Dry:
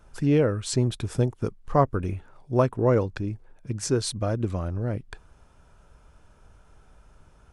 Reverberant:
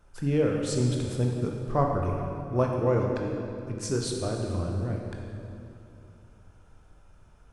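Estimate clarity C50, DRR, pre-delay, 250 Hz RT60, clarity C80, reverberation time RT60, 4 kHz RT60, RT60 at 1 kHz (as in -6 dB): 1.5 dB, 0.0 dB, 15 ms, 3.2 s, 3.0 dB, 2.8 s, 2.1 s, 2.6 s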